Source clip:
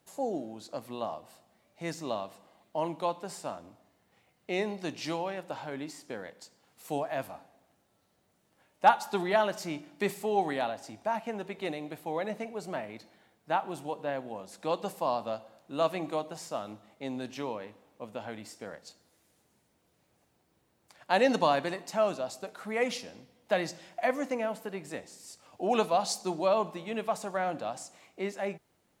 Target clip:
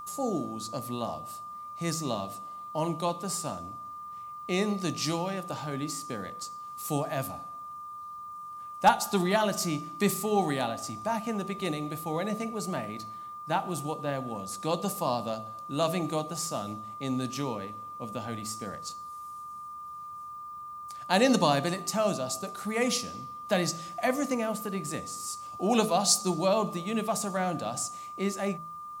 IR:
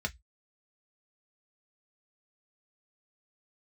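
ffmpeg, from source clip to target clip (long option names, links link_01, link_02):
-af "aeval=exprs='val(0)+0.0112*sin(2*PI*1200*n/s)':channel_layout=same,bass=frequency=250:gain=13,treble=frequency=4000:gain=13,bandreject=frequency=54.34:width_type=h:width=4,bandreject=frequency=108.68:width_type=h:width=4,bandreject=frequency=163.02:width_type=h:width=4,bandreject=frequency=217.36:width_type=h:width=4,bandreject=frequency=271.7:width_type=h:width=4,bandreject=frequency=326.04:width_type=h:width=4,bandreject=frequency=380.38:width_type=h:width=4,bandreject=frequency=434.72:width_type=h:width=4,bandreject=frequency=489.06:width_type=h:width=4,bandreject=frequency=543.4:width_type=h:width=4,bandreject=frequency=597.74:width_type=h:width=4,bandreject=frequency=652.08:width_type=h:width=4,bandreject=frequency=706.42:width_type=h:width=4,bandreject=frequency=760.76:width_type=h:width=4"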